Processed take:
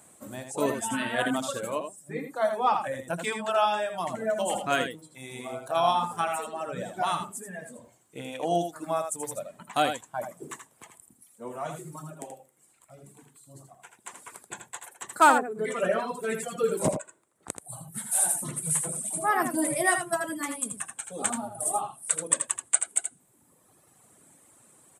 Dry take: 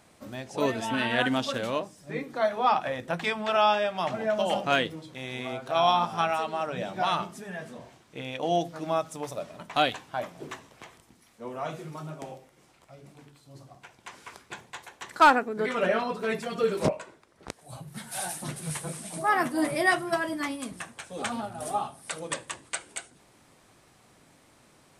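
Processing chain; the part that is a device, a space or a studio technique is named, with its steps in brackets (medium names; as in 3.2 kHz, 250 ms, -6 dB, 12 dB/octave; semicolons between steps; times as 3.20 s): budget condenser microphone (high-pass 99 Hz; resonant high shelf 6.5 kHz +8 dB, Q 3); reverb removal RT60 1.8 s; peaking EQ 2.4 kHz -3 dB 0.84 oct; delay 81 ms -7.5 dB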